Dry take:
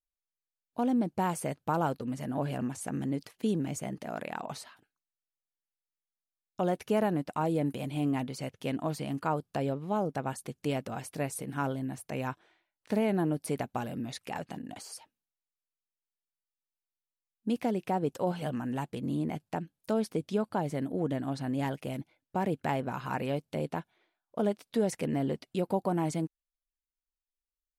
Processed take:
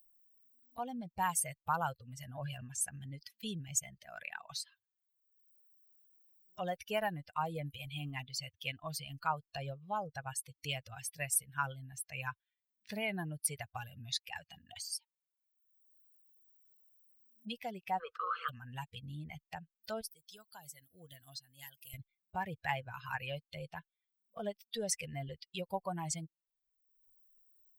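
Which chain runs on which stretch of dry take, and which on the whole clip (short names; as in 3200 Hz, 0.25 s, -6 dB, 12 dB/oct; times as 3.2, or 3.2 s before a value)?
17.98–18.48 spectral limiter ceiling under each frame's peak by 27 dB + double band-pass 760 Hz, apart 1.4 oct + fast leveller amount 50%
20.01–21.94 pre-emphasis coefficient 0.8 + notch 2400 Hz, Q 19
whole clip: per-bin expansion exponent 2; passive tone stack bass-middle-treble 10-0-10; upward compressor, threshold -53 dBFS; gain +11.5 dB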